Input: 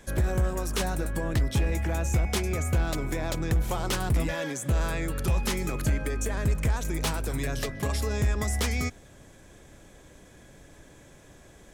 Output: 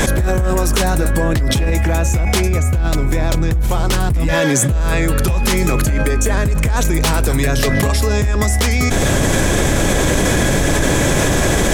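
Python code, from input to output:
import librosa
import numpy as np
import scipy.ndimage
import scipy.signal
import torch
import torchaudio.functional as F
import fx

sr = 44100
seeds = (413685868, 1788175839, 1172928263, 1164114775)

y = fx.low_shelf(x, sr, hz=140.0, db=7.5, at=(2.48, 4.91))
y = fx.env_flatten(y, sr, amount_pct=100)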